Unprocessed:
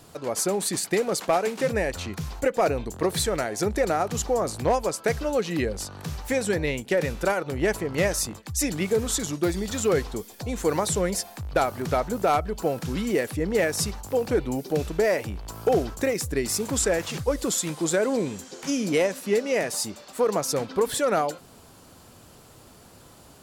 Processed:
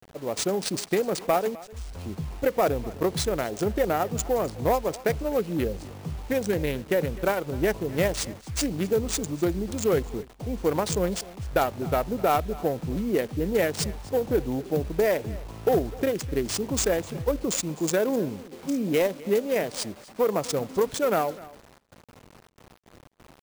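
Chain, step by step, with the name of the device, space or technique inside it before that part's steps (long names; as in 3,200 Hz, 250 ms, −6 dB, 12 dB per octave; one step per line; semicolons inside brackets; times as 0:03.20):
adaptive Wiener filter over 25 samples
0:01.55–0:01.95: inverse Chebyshev band-stop filter 220–1,700 Hz, stop band 60 dB
noise gate with hold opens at −44 dBFS
early 8-bit sampler (sample-rate reduction 14,000 Hz, jitter 0%; bit reduction 8 bits)
single-tap delay 254 ms −20 dB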